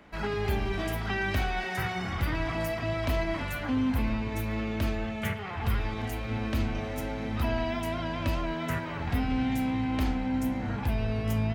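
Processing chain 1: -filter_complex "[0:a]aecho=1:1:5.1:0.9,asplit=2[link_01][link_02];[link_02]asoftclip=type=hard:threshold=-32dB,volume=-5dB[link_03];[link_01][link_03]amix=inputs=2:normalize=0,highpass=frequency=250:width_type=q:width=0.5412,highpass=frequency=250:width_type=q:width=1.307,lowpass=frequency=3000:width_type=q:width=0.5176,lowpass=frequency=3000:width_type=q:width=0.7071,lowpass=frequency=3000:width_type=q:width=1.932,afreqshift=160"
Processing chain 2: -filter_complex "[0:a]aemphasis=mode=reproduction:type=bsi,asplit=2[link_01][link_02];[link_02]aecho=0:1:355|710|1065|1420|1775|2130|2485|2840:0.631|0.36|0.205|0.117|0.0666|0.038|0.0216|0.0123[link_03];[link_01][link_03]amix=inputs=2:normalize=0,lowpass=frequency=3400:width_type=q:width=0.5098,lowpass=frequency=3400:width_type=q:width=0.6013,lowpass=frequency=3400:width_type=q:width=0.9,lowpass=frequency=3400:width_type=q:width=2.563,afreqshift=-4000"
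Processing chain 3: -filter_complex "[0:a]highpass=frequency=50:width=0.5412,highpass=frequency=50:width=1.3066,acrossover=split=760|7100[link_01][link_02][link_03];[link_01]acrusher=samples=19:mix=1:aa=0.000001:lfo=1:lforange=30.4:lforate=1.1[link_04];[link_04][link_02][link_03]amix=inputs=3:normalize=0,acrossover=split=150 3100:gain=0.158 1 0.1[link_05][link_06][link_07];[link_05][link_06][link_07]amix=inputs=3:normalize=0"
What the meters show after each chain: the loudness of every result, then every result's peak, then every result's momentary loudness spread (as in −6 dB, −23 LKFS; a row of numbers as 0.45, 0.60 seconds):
−29.0, −14.5, −33.5 LKFS; −14.5, −5.0, −17.5 dBFS; 5, 4, 6 LU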